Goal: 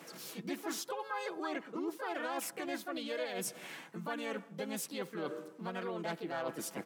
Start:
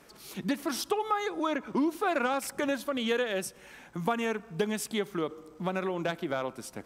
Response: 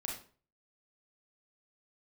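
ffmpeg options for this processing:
-filter_complex "[0:a]asplit=2[s0][s1];[s1]asetrate=55563,aresample=44100,atempo=0.793701,volume=0.891[s2];[s0][s2]amix=inputs=2:normalize=0,areverse,acompressor=threshold=0.0126:ratio=6,areverse,highpass=f=140:w=0.5412,highpass=f=140:w=1.3066,aecho=1:1:6.1:0.35,volume=1.12"

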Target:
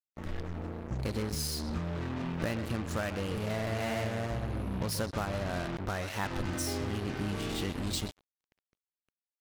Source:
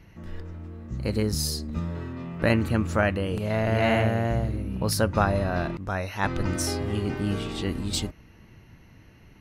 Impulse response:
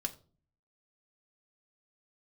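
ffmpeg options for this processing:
-filter_complex "[0:a]acompressor=threshold=0.0282:ratio=5,asplit=2[s0][s1];[s1]adelay=130,highpass=300,lowpass=3400,asoftclip=type=hard:threshold=0.0335,volume=0.355[s2];[s0][s2]amix=inputs=2:normalize=0,acrusher=bits=5:mix=0:aa=0.5"

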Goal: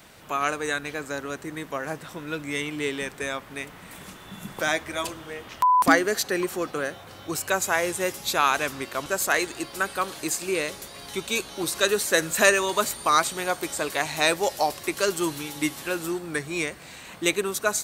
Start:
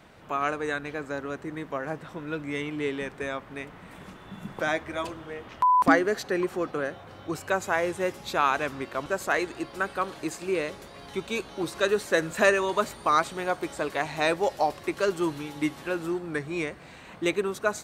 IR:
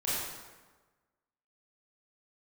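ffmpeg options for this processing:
-af "crystalizer=i=4:c=0"

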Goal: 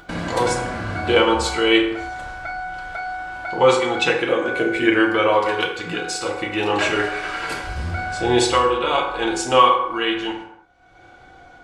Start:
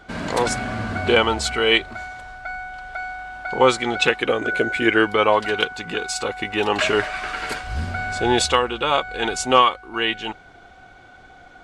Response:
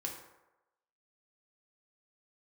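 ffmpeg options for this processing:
-filter_complex "[0:a]agate=range=0.0355:threshold=0.01:ratio=16:detection=peak,acompressor=mode=upward:threshold=0.0794:ratio=2.5[s0];[1:a]atrim=start_sample=2205,afade=t=out:st=0.38:d=0.01,atrim=end_sample=17199[s1];[s0][s1]afir=irnorm=-1:irlink=0"

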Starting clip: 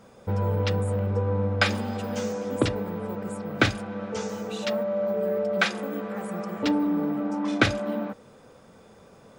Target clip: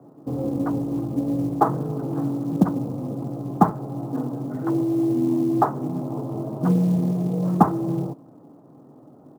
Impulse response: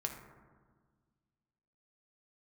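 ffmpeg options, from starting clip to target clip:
-af "highpass=f=210:t=q:w=0.5412,highpass=f=210:t=q:w=1.307,lowpass=f=2300:t=q:w=0.5176,lowpass=f=2300:t=q:w=0.7071,lowpass=f=2300:t=q:w=1.932,afreqshift=55,asetrate=22696,aresample=44100,atempo=1.94306,acrusher=bits=8:mode=log:mix=0:aa=0.000001,volume=1.88"

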